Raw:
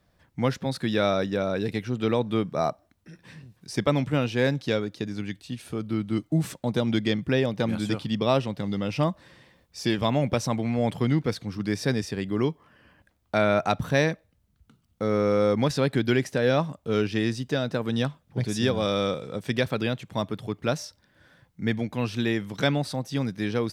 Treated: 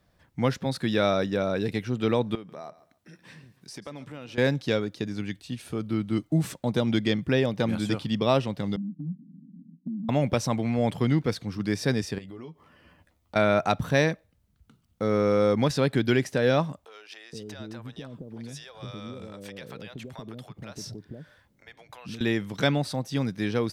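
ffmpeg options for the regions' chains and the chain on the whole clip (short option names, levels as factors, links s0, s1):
-filter_complex "[0:a]asettb=1/sr,asplit=3[s0][s1][s2];[s0]atrim=end=2.354[s3];[s1]atrim=start=2.35:end=4.38,asetpts=PTS-STARTPTS,afade=t=in:d=0.004:c=qsin,afade=t=out:st=2.026:d=0.004:c=qsin,highpass=f=210:p=1,acompressor=threshold=0.00891:ratio=3:attack=3.2:release=140:knee=1:detection=peak,aecho=1:1:139|278:0.141|0.0339,atrim=end_sample=89523[s4];[s2]atrim=start=4.376[s5];[s3][s4]acrossfade=d=0.004:c1=hsin:c2=qsin[s6];[s6][s5]acrossfade=d=0.004:c1=qsin:c2=hsin,asettb=1/sr,asplit=3[s7][s8][s9];[s7]atrim=end=8.764[s10];[s8]atrim=start=8.76:end=10.09,asetpts=PTS-STARTPTS,afade=t=in:d=0.004:c=qsin,afade=t=out:st=1.326:d=0.004:c=qsin,aeval=exprs='val(0)+0.5*0.0211*sgn(val(0))':c=same,asuperpass=centerf=210:order=12:qfactor=1.7,acompressor=threshold=0.0251:ratio=2:attack=3.2:release=140:knee=1:detection=peak[s11];[s9]atrim=start=10.086[s12];[s10][s11]acrossfade=d=0.004:c1=hsin:c2=qsin[s13];[s13][s12]acrossfade=d=0.004:c1=qsin:c2=hsin,asettb=1/sr,asplit=3[s14][s15][s16];[s14]atrim=end=12.184[s17];[s15]atrim=start=12.18:end=13.36,asetpts=PTS-STARTPTS,afade=t=in:d=0.004:c=qsin,afade=t=out:st=1.176:d=0.004:c=qsin,bandreject=f=1600:w=8.9,asplit=2[s18][s19];[s19]adelay=12,volume=0.531[s20];[s18][s20]amix=inputs=2:normalize=0,atrim=end_sample=52038,acompressor=threshold=0.01:ratio=5:attack=3.2:release=140:knee=1:detection=peak[s21];[s16]atrim=start=13.356[s22];[s17][s21]acrossfade=d=0.004:c1=hsin:c2=qsin[s23];[s23][s22]acrossfade=d=0.004:c1=qsin:c2=hsin,asettb=1/sr,asplit=3[s24][s25][s26];[s24]atrim=end=16.854[s27];[s25]atrim=start=16.85:end=22.21,asetpts=PTS-STARTPTS,afade=t=in:d=0.004:c=qsin,afade=t=out:st=5.356:d=0.004:c=qsin,acompressor=threshold=0.02:ratio=10:attack=3.2:release=140:knee=1:detection=peak,acrossover=split=550[s28][s29];[s28]adelay=470[s30];[s30][s29]amix=inputs=2:normalize=0,atrim=end_sample=236376[s31];[s26]atrim=start=22.206[s32];[s27][s31]acrossfade=d=0.004:c1=hsin:c2=qsin[s33];[s33][s32]acrossfade=d=0.004:c1=qsin:c2=hsin"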